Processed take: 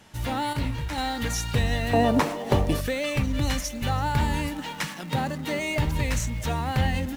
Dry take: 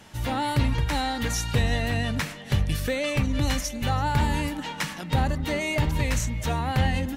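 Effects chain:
0:01.93–0:02.81: flat-topped bell 530 Hz +14.5 dB 2.5 octaves
0:04.87–0:05.59: high-pass filter 120 Hz 24 dB per octave
in parallel at −9 dB: bit reduction 6 bits
0:00.53–0:00.98: on the sum: micro pitch shift up and down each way 44 cents
level −3.5 dB

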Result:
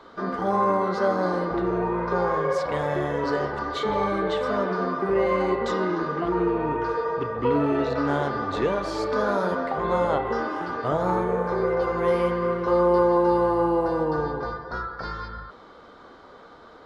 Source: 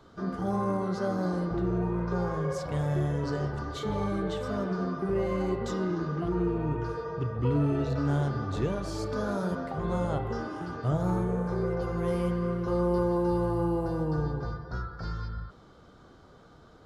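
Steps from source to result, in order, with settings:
graphic EQ with 10 bands 125 Hz −6 dB, 250 Hz +6 dB, 500 Hz +9 dB, 1,000 Hz +11 dB, 2,000 Hz +11 dB, 4,000 Hz +8 dB
level −3 dB

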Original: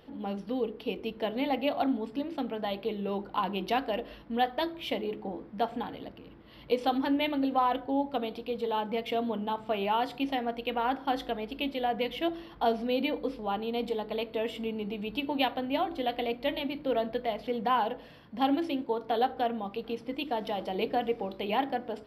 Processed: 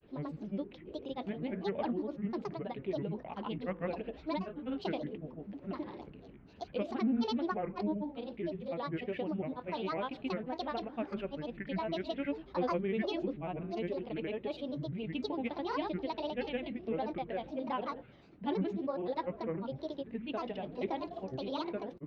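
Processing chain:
parametric band 1,000 Hz −7.5 dB 1.8 octaves
soft clipping −17.5 dBFS, distortion −30 dB
low-pass filter 2,400 Hz 12 dB per octave
granular cloud, grains 20 per second, pitch spread up and down by 7 semitones
level −1 dB

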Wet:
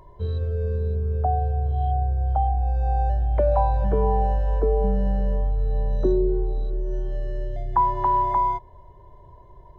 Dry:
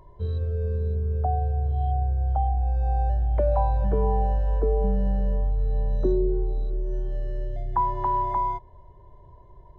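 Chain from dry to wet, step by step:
low-shelf EQ 390 Hz −3.5 dB
level +4.5 dB

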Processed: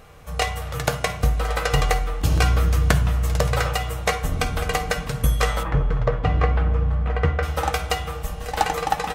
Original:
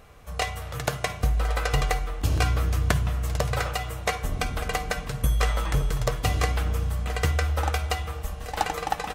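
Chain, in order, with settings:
0:05.63–0:07.43: low-pass filter 1,800 Hz 12 dB per octave
convolution reverb RT60 0.45 s, pre-delay 3 ms, DRR 9.5 dB
level +4 dB

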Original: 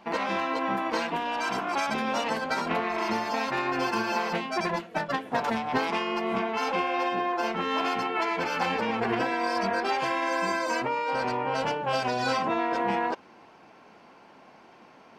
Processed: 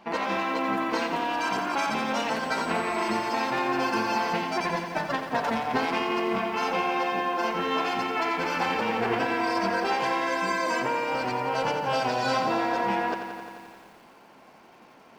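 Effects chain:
0:02.42–0:03.16: steady tone 8,000 Hz −55 dBFS
feedback echo at a low word length 87 ms, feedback 80%, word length 9 bits, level −9 dB

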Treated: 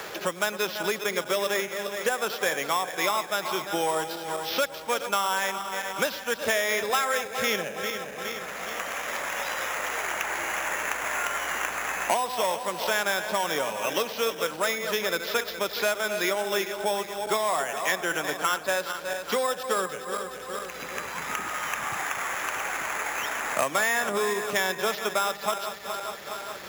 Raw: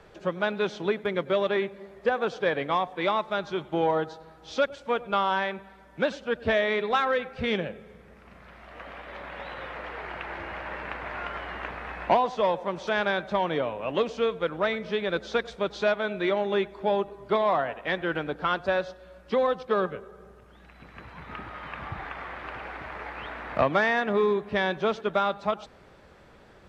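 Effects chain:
feedback delay that plays each chunk backwards 208 ms, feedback 67%, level −11 dB
spectral tilt +3.5 dB per octave
decimation without filtering 5×
multiband upward and downward compressor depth 70%

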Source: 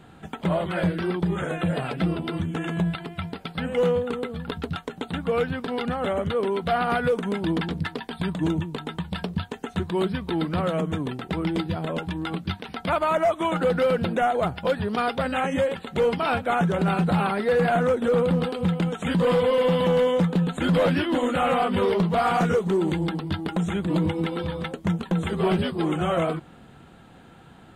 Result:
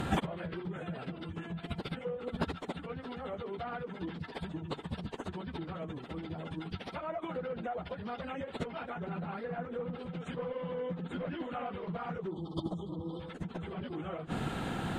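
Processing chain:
time-frequency box erased 0:22.80–0:24.44, 1,300–3,000 Hz
treble cut that deepens with the level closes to 2,300 Hz, closed at −17.5 dBFS
downward compressor 4 to 1, threshold −23 dBFS, peak gain reduction 5 dB
gate with flip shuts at −23 dBFS, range −26 dB
time stretch by phase vocoder 0.54×
level +16.5 dB

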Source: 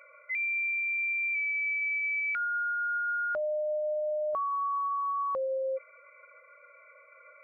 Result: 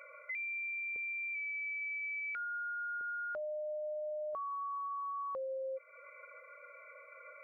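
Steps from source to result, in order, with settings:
parametric band 460 Hz +2.5 dB 0.59 octaves, from 0:00.96 +11.5 dB, from 0:03.01 +2.5 dB
downward compressor 3 to 1, threshold −43 dBFS, peak gain reduction 11 dB
level +1 dB

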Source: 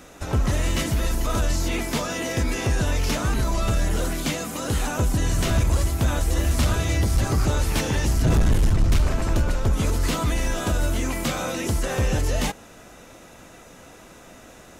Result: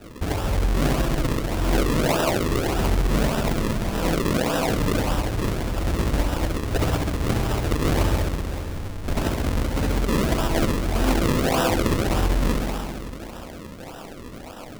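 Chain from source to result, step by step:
compressor whose output falls as the input rises −24 dBFS, ratio −0.5
feedback echo with a low-pass in the loop 66 ms, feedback 85%, low-pass 4,700 Hz, level −3.5 dB
formants moved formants +6 semitones
sample-and-hold swept by an LFO 40×, swing 100% 1.7 Hz

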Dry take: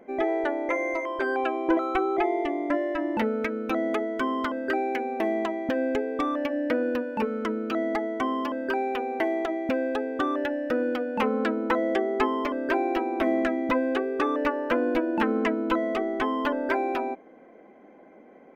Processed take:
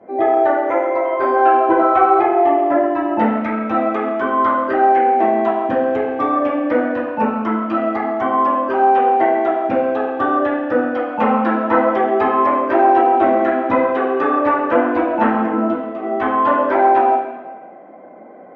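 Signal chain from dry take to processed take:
drawn EQ curve 410 Hz 0 dB, 620 Hz +10 dB, 4,400 Hz −1 dB
0:15.27–0:16.03: compressor whose output falls as the input rises −25 dBFS, ratio −0.5
convolution reverb RT60 1.1 s, pre-delay 3 ms, DRR −11 dB
level −13 dB

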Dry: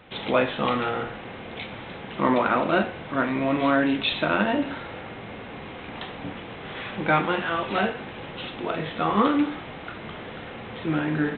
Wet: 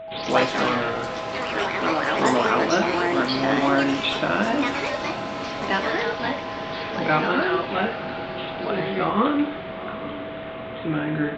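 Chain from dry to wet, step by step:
steady tone 650 Hz −34 dBFS
delay with pitch and tempo change per echo 80 ms, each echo +4 semitones, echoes 3
feedback delay with all-pass diffusion 803 ms, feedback 50%, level −13.5 dB

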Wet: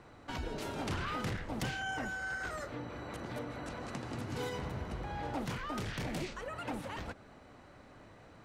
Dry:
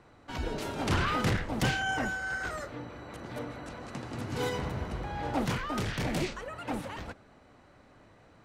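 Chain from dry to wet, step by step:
downward compressor 2.5 to 1, threshold −41 dBFS, peak gain reduction 12 dB
level +2 dB

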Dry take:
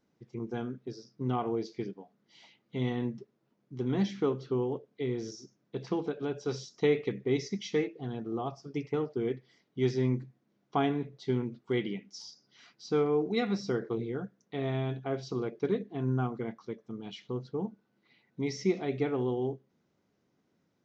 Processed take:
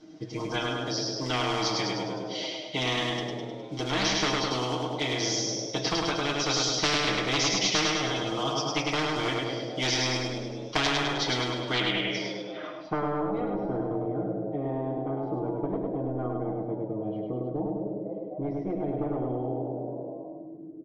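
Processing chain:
one scale factor per block 7 bits
comb filter 6.5 ms, depth 98%
gain into a clipping stage and back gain 22 dB
hum removal 58.95 Hz, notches 32
hollow resonant body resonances 320/650/3,200 Hz, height 18 dB, ringing for 95 ms
on a send: repeating echo 103 ms, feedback 50%, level −3.5 dB
on the sum: low-pass filter sweep 5,400 Hz → 360 Hz, 0:11.60–0:13.54
echo with shifted repeats 255 ms, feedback 50%, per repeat +100 Hz, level −23 dB
every bin compressed towards the loudest bin 4 to 1
level −8 dB

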